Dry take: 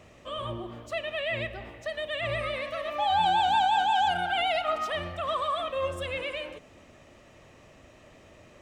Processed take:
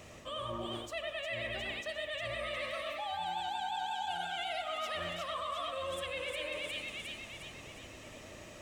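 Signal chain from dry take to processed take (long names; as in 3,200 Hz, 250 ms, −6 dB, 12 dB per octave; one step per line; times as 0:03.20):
high-shelf EQ 4,100 Hz +10 dB
echo with a time of its own for lows and highs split 2,000 Hz, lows 98 ms, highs 357 ms, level −3 dB
reversed playback
downward compressor 6 to 1, threshold −36 dBFS, peak gain reduction 17.5 dB
reversed playback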